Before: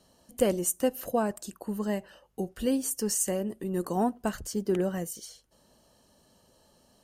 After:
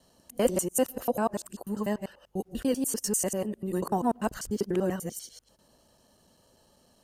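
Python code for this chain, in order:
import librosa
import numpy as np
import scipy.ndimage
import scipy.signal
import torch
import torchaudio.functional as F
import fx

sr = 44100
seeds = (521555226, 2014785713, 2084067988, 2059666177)

y = fx.local_reverse(x, sr, ms=98.0)
y = fx.dynamic_eq(y, sr, hz=980.0, q=2.3, threshold_db=-44.0, ratio=4.0, max_db=4)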